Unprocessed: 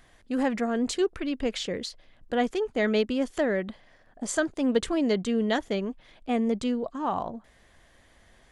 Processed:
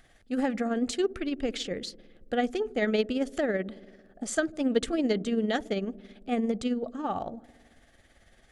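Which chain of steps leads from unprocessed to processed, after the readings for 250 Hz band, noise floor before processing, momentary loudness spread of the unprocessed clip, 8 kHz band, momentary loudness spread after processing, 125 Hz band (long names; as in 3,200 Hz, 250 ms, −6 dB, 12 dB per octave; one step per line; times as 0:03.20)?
−1.5 dB, −59 dBFS, 9 LU, −2.5 dB, 11 LU, −1.5 dB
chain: Butterworth band-reject 1,000 Hz, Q 4.8
on a send: delay with a low-pass on its return 73 ms, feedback 74%, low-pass 450 Hz, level −17 dB
on the sum: amplitude tremolo 18 Hz, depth 45%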